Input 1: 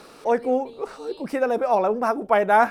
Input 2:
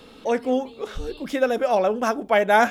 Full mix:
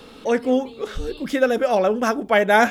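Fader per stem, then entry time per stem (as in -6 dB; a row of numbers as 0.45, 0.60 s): -9.0, +3.0 dB; 0.00, 0.00 s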